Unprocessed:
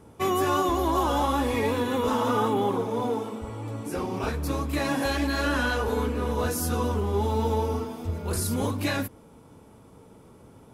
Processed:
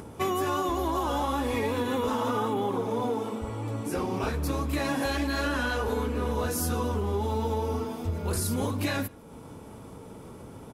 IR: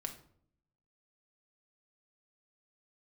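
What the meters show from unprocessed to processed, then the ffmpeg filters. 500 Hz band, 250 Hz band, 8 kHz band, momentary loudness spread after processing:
-2.5 dB, -2.0 dB, -1.5 dB, 17 LU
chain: -filter_complex "[0:a]acompressor=threshold=0.0501:ratio=6,asplit=2[s0][s1];[s1]adelay=151.6,volume=0.0447,highshelf=f=4000:g=-3.41[s2];[s0][s2]amix=inputs=2:normalize=0,acompressor=mode=upward:threshold=0.0126:ratio=2.5,volume=1.19"

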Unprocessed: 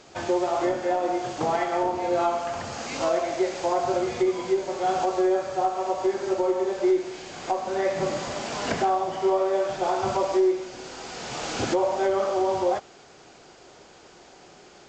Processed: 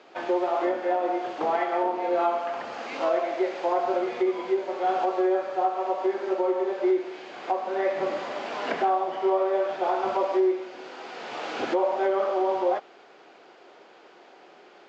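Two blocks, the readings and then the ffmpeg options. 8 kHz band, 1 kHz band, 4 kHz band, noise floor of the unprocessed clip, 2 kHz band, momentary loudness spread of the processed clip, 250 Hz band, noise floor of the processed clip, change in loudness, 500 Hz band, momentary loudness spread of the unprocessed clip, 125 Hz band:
under -15 dB, 0.0 dB, -5.0 dB, -51 dBFS, -0.5 dB, 8 LU, -2.0 dB, -52 dBFS, -1.0 dB, -1.0 dB, 8 LU, under -15 dB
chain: -filter_complex "[0:a]highpass=96,acrossover=split=250 3800:gain=0.0708 1 0.0708[s0][s1][s2];[s0][s1][s2]amix=inputs=3:normalize=0"

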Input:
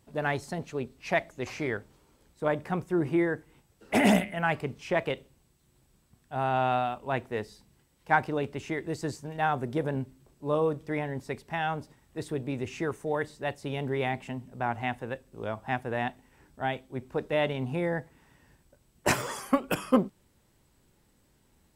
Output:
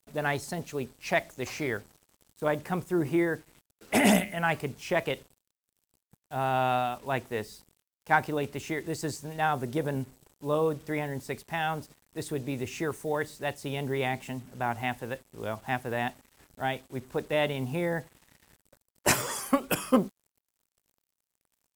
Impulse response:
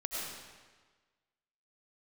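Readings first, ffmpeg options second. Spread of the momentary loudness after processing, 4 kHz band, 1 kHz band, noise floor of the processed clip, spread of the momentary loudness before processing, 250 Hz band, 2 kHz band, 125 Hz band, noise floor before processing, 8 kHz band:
11 LU, +2.5 dB, 0.0 dB, under -85 dBFS, 11 LU, -0.5 dB, +1.0 dB, -0.5 dB, -67 dBFS, +6.5 dB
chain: -af "acrusher=bits=8:mix=0:aa=0.5,aemphasis=mode=production:type=cd"

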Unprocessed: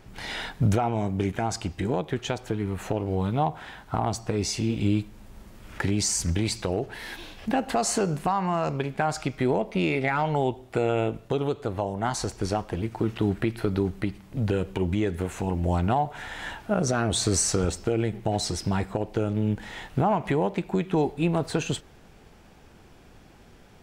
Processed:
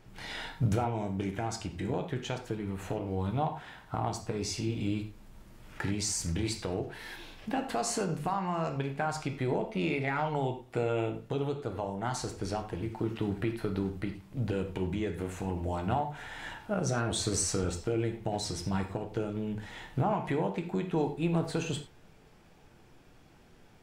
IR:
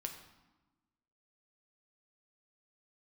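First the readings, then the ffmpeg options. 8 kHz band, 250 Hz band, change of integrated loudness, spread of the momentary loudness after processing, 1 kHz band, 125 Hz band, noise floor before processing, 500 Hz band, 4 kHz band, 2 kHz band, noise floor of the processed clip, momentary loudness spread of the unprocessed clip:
-6.5 dB, -6.0 dB, -6.0 dB, 7 LU, -6.5 dB, -6.0 dB, -52 dBFS, -6.5 dB, -6.0 dB, -6.0 dB, -58 dBFS, 7 LU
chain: -filter_complex "[1:a]atrim=start_sample=2205,afade=t=out:st=0.16:d=0.01,atrim=end_sample=7497[s0];[0:a][s0]afir=irnorm=-1:irlink=0,volume=0.631"

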